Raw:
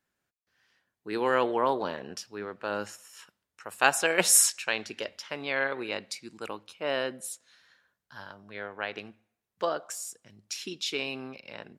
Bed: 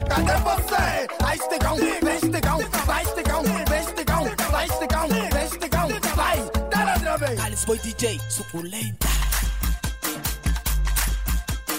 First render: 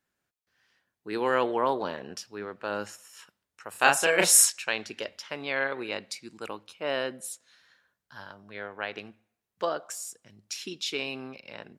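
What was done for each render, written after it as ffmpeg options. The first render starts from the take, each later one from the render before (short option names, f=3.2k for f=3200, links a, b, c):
-filter_complex "[0:a]asettb=1/sr,asplit=3[a][b][c];[a]atrim=end=3.704[d];[b]atrim=start=3.7:end=4.45,asetpts=PTS-STARTPTS,afade=t=in:d=0.004:c=qsin,afade=t=out:st=0.746:d=0.004:c=qsin,asplit=2[e][f];[f]adelay=35,volume=-2.5dB[g];[e][g]amix=inputs=2:normalize=0,atrim=end_sample=33075[h];[c]atrim=start=4.446[i];[d][h]acrossfade=d=0.004:c1=hsin:c2=qsin[j];[j][i]acrossfade=d=0.004:c1=qsin:c2=hsin"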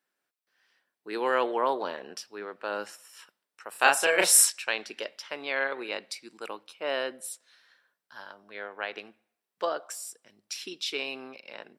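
-af "highpass=320,bandreject=f=6.7k:w=8.4"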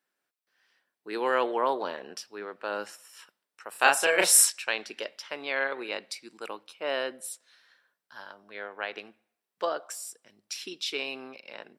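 -af anull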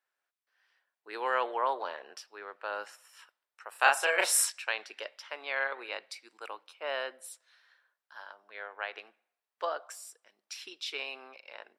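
-af "highpass=680,highshelf=f=3k:g=-8.5"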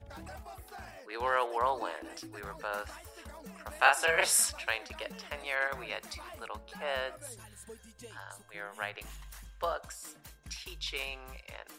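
-filter_complex "[1:a]volume=-26dB[a];[0:a][a]amix=inputs=2:normalize=0"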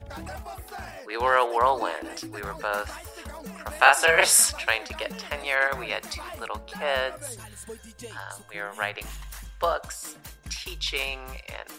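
-af "volume=8.5dB,alimiter=limit=-3dB:level=0:latency=1"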